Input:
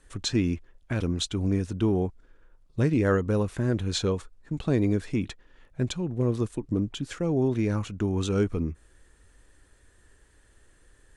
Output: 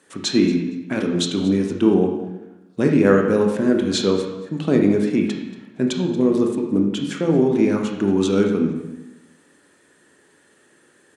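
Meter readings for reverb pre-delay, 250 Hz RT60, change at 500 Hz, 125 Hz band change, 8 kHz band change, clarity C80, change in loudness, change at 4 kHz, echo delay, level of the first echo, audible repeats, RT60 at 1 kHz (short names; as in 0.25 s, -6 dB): 19 ms, 1.1 s, +10.0 dB, +0.5 dB, +6.0 dB, 7.5 dB, +8.0 dB, +7.0 dB, 0.232 s, -17.5 dB, 2, 0.95 s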